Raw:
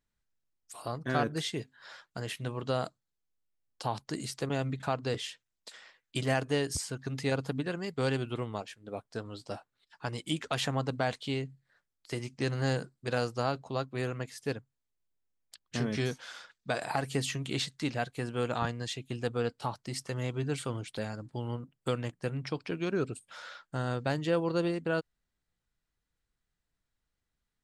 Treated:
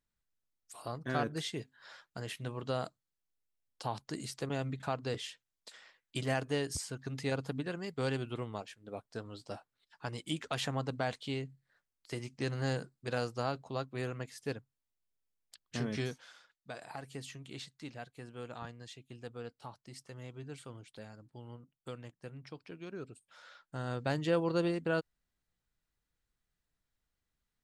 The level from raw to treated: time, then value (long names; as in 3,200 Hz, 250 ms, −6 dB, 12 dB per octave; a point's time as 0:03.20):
0:16.00 −4 dB
0:16.40 −13 dB
0:23.22 −13 dB
0:24.17 −1.5 dB